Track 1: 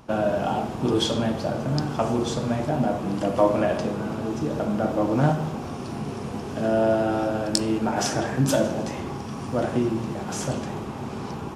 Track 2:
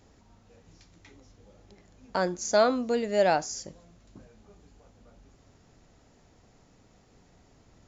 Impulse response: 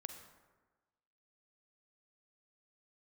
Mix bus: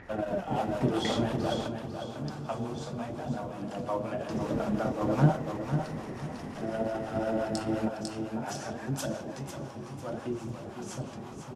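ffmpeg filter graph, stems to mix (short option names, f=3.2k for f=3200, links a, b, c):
-filter_complex "[0:a]acrossover=split=610[a][b];[a]aeval=exprs='val(0)*(1-0.7/2+0.7/2*cos(2*PI*5.7*n/s))':c=same[c];[b]aeval=exprs='val(0)*(1-0.7/2-0.7/2*cos(2*PI*5.7*n/s))':c=same[d];[c][d]amix=inputs=2:normalize=0,flanger=delay=0.4:depth=8.6:regen=50:speed=0.7:shape=triangular,volume=3dB,asplit=3[e][f][g];[f]volume=-18.5dB[h];[g]volume=-7.5dB[i];[1:a]acompressor=mode=upward:threshold=-54dB:ratio=2.5,lowpass=f=1.9k:t=q:w=5.7,volume=3dB,asplit=3[j][k][l];[j]atrim=end=1.66,asetpts=PTS-STARTPTS,afade=t=out:st=1.656:d=0.004:c=hsin[m];[k]atrim=start=1.66:end=4.28,asetpts=PTS-STARTPTS,volume=0[n];[l]atrim=start=4.28,asetpts=PTS-STARTPTS,afade=t=in:d=0.004:c=hsin[o];[m][n][o]concat=n=3:v=0:a=1,asplit=3[p][q][r];[q]volume=-6dB[s];[r]apad=whole_len=509600[t];[e][t]sidechaingate=range=-33dB:threshold=-52dB:ratio=16:detection=peak[u];[2:a]atrim=start_sample=2205[v];[h][s]amix=inputs=2:normalize=0[w];[w][v]afir=irnorm=-1:irlink=0[x];[i]aecho=0:1:499|998|1497|1996|2495:1|0.35|0.122|0.0429|0.015[y];[u][p][x][y]amix=inputs=4:normalize=0"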